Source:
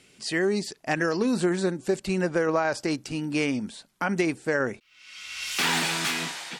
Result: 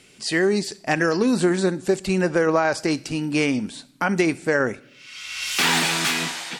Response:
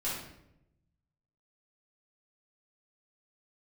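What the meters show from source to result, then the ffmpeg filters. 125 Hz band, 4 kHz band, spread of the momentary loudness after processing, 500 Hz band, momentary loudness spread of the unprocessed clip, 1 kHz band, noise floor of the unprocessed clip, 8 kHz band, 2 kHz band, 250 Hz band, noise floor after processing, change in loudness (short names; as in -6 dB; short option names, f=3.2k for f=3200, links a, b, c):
+4.5 dB, +5.0 dB, 8 LU, +5.0 dB, 8 LU, +5.0 dB, -61 dBFS, +5.5 dB, +5.0 dB, +5.0 dB, -52 dBFS, +5.0 dB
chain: -filter_complex "[0:a]asplit=2[a][b];[1:a]atrim=start_sample=2205,highshelf=f=2.1k:g=11[c];[b][c]afir=irnorm=-1:irlink=0,volume=-26.5dB[d];[a][d]amix=inputs=2:normalize=0,volume=4.5dB"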